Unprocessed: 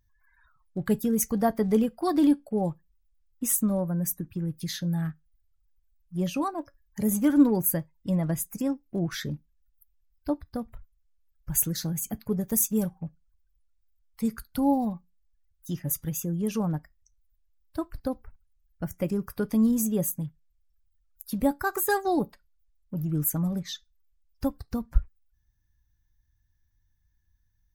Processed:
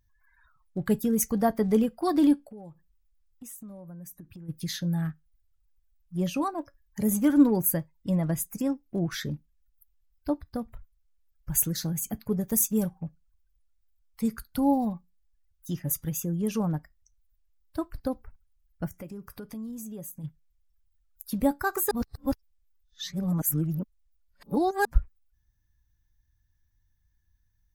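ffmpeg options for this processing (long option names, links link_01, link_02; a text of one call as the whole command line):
ffmpeg -i in.wav -filter_complex "[0:a]asplit=3[link_01][link_02][link_03];[link_01]afade=type=out:start_time=2.45:duration=0.02[link_04];[link_02]acompressor=threshold=-43dB:ratio=5:attack=3.2:release=140:knee=1:detection=peak,afade=type=in:start_time=2.45:duration=0.02,afade=type=out:start_time=4.48:duration=0.02[link_05];[link_03]afade=type=in:start_time=4.48:duration=0.02[link_06];[link_04][link_05][link_06]amix=inputs=3:normalize=0,asplit=3[link_07][link_08][link_09];[link_07]afade=type=out:start_time=18.88:duration=0.02[link_10];[link_08]acompressor=threshold=-41dB:ratio=3:attack=3.2:release=140:knee=1:detection=peak,afade=type=in:start_time=18.88:duration=0.02,afade=type=out:start_time=20.23:duration=0.02[link_11];[link_09]afade=type=in:start_time=20.23:duration=0.02[link_12];[link_10][link_11][link_12]amix=inputs=3:normalize=0,asplit=3[link_13][link_14][link_15];[link_13]atrim=end=21.912[link_16];[link_14]atrim=start=21.908:end=24.852,asetpts=PTS-STARTPTS,areverse[link_17];[link_15]atrim=start=24.848[link_18];[link_16][link_17]acrossfade=duration=0.004:curve1=hsin:curve2=hsin[link_19];[link_19][link_18]acrossfade=duration=0.004:curve1=hsin:curve2=hsin" out.wav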